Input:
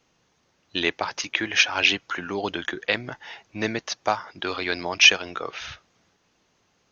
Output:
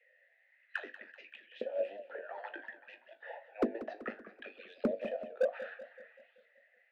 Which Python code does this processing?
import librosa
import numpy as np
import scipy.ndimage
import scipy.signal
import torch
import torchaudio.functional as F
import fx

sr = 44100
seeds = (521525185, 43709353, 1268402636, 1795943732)

y = fx.graphic_eq_15(x, sr, hz=(160, 630, 1600, 4000), db=(9, 12, 6, 8))
y = fx.cheby_harmonics(y, sr, harmonics=(7,), levels_db=(-7,), full_scale_db=3.0)
y = fx.filter_lfo_highpass(y, sr, shape='saw_up', hz=0.62, low_hz=450.0, high_hz=3800.0, q=4.6)
y = fx.vowel_filter(y, sr, vowel='e')
y = fx.auto_wah(y, sr, base_hz=230.0, top_hz=2100.0, q=14.0, full_db=-22.5, direction='down')
y = fx.comb_fb(y, sr, f0_hz=51.0, decay_s=0.23, harmonics='all', damping=0.0, mix_pct=70)
y = np.clip(y, -10.0 ** (-39.0 / 20.0), 10.0 ** (-39.0 / 20.0))
y = fx.echo_warbled(y, sr, ms=191, feedback_pct=53, rate_hz=2.8, cents=149, wet_db=-14.0)
y = y * 10.0 ** (16.0 / 20.0)